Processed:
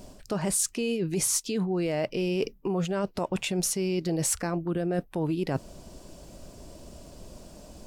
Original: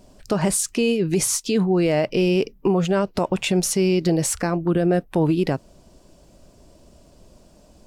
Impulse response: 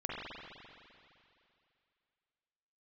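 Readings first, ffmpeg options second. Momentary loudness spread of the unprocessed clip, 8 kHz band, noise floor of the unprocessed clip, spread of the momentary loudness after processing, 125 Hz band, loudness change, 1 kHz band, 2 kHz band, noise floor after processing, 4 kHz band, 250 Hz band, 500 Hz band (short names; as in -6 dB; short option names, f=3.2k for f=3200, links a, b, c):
4 LU, -3.5 dB, -53 dBFS, 22 LU, -8.0 dB, -7.5 dB, -8.0 dB, -8.0 dB, -54 dBFS, -6.5 dB, -8.5 dB, -8.5 dB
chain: -af "areverse,acompressor=threshold=-31dB:ratio=6,areverse,highshelf=f=7.6k:g=4,volume=4.5dB"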